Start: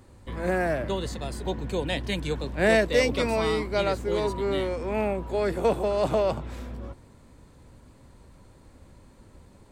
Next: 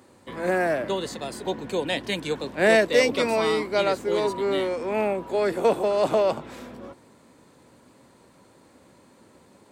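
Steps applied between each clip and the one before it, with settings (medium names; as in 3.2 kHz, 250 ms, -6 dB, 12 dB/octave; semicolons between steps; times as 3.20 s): high-pass 220 Hz 12 dB/octave; trim +3 dB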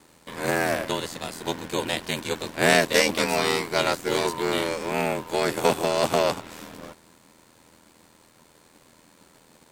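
formants flattened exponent 0.6; ring modulator 41 Hz; trim +2 dB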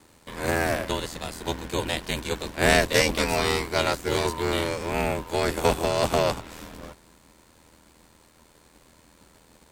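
octave divider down 2 oct, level -1 dB; trim -1 dB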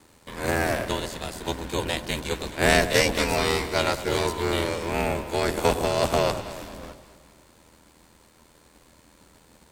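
echo whose repeats swap between lows and highs 106 ms, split 860 Hz, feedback 69%, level -11 dB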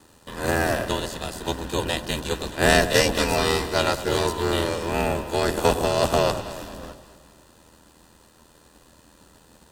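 Butterworth band-stop 2.2 kHz, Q 6.8; trim +2 dB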